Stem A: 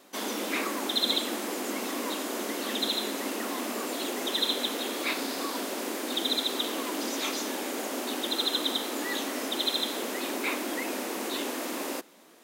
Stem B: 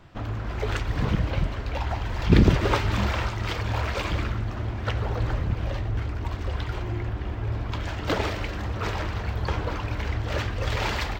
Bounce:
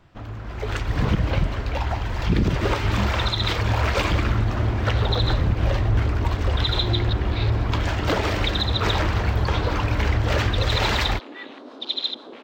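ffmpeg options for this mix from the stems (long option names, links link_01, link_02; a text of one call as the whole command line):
ffmpeg -i stem1.wav -i stem2.wav -filter_complex "[0:a]afwtdn=0.0178,acrossover=split=690[link_01][link_02];[link_01]aeval=exprs='val(0)*(1-0.5/2+0.5/2*cos(2*PI*6.1*n/s))':channel_layout=same[link_03];[link_02]aeval=exprs='val(0)*(1-0.5/2-0.5/2*cos(2*PI*6.1*n/s))':channel_layout=same[link_04];[link_03][link_04]amix=inputs=2:normalize=0,lowpass=frequency=3900:width_type=q:width=3.9,adelay=2300,volume=-16.5dB[link_05];[1:a]volume=-4dB[link_06];[link_05][link_06]amix=inputs=2:normalize=0,dynaudnorm=framelen=140:gausssize=13:maxgain=12dB,alimiter=limit=-11dB:level=0:latency=1:release=110" out.wav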